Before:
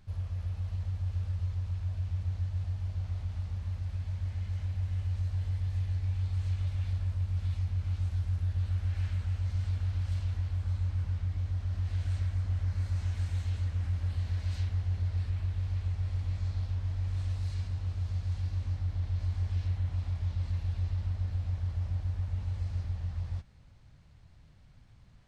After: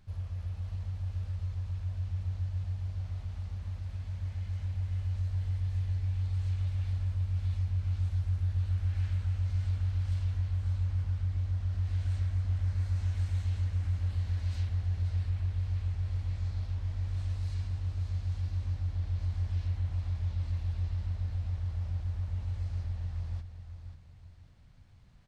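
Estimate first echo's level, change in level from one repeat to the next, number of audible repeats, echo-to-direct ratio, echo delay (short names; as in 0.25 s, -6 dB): -10.0 dB, -9.5 dB, 3, -9.5 dB, 0.539 s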